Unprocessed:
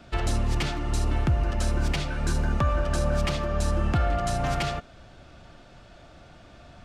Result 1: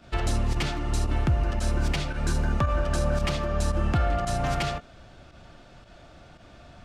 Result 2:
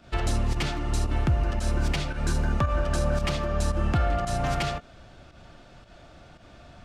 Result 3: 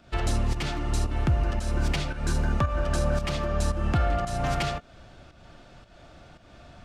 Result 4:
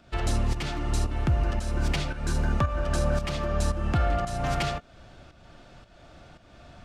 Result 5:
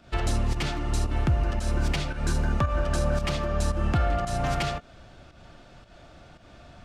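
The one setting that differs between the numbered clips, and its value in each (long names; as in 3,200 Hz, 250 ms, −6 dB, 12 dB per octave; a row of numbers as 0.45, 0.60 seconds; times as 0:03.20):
fake sidechain pumping, release: 65, 106, 265, 404, 166 milliseconds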